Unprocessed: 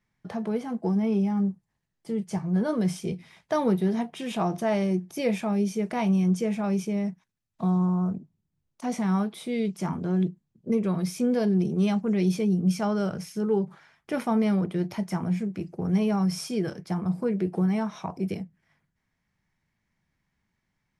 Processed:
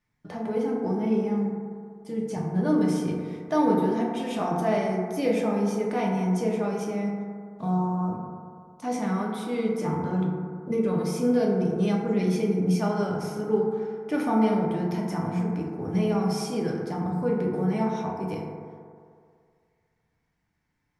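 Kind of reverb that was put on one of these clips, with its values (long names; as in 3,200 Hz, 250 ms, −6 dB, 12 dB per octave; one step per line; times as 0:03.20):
feedback delay network reverb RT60 2.2 s, low-frequency decay 0.8×, high-frequency decay 0.25×, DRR −2.5 dB
level −3 dB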